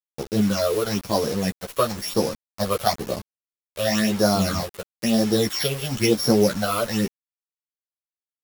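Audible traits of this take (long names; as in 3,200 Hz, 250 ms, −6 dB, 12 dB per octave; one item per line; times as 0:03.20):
a buzz of ramps at a fixed pitch in blocks of 8 samples
phaser sweep stages 8, 1 Hz, lowest notch 230–2,800 Hz
a quantiser's noise floor 6 bits, dither none
a shimmering, thickened sound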